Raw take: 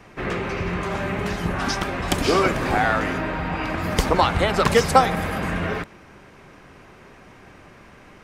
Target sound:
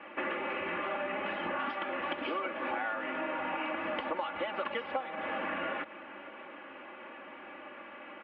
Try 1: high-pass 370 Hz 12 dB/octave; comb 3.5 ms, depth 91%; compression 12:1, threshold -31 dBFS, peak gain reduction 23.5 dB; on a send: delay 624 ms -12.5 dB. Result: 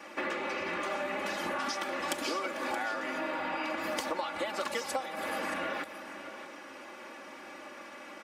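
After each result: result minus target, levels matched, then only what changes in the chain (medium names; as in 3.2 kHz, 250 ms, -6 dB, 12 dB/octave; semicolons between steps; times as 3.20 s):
echo-to-direct +7.5 dB; 4 kHz band +3.5 dB
change: delay 624 ms -20 dB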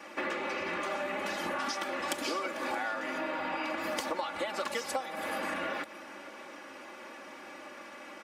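4 kHz band +3.5 dB
add after compression: elliptic low-pass 3 kHz, stop band 60 dB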